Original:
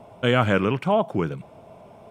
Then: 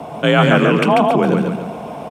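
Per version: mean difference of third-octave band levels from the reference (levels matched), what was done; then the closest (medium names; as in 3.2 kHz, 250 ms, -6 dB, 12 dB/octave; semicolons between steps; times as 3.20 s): 8.0 dB: in parallel at -0.5 dB: compressor with a negative ratio -32 dBFS, ratio -1; on the sum: frequency shift +40 Hz; feedback delay 141 ms, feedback 40%, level -3.5 dB; trim +5 dB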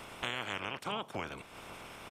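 14.5 dB: spectral peaks clipped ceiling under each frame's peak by 27 dB; compression 3:1, threshold -38 dBFS, peak gain reduction 18 dB; resampled via 32 kHz; trim -1.5 dB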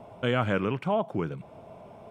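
2.0 dB: treble shelf 4.7 kHz -5.5 dB; in parallel at +1.5 dB: compression, threshold -34 dBFS, peak gain reduction 19 dB; on the sum: trim -7.5 dB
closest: third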